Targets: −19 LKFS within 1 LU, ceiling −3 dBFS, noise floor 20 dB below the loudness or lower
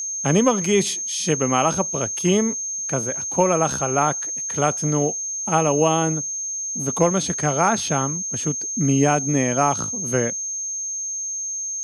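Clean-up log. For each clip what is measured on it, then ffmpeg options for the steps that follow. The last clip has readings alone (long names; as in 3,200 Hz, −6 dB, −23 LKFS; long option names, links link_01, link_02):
interfering tone 6,400 Hz; level of the tone −25 dBFS; integrated loudness −21.0 LKFS; sample peak −4.5 dBFS; target loudness −19.0 LKFS
→ -af "bandreject=frequency=6400:width=30"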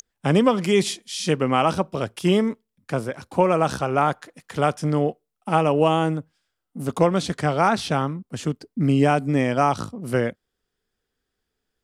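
interfering tone none found; integrated loudness −22.5 LKFS; sample peak −5.0 dBFS; target loudness −19.0 LKFS
→ -af "volume=3.5dB,alimiter=limit=-3dB:level=0:latency=1"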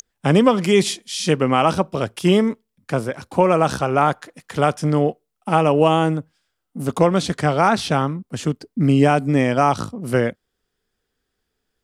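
integrated loudness −19.0 LKFS; sample peak −3.0 dBFS; background noise floor −77 dBFS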